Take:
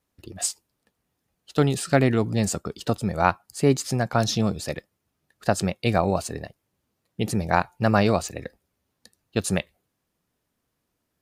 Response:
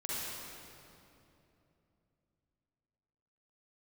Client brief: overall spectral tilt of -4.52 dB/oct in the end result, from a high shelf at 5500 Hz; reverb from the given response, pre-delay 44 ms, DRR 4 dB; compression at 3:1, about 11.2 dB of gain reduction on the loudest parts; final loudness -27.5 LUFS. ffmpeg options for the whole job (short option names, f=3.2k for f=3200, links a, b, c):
-filter_complex "[0:a]highshelf=f=5.5k:g=4.5,acompressor=threshold=-29dB:ratio=3,asplit=2[a][b];[1:a]atrim=start_sample=2205,adelay=44[c];[b][c]afir=irnorm=-1:irlink=0,volume=-8dB[d];[a][d]amix=inputs=2:normalize=0,volume=4.5dB"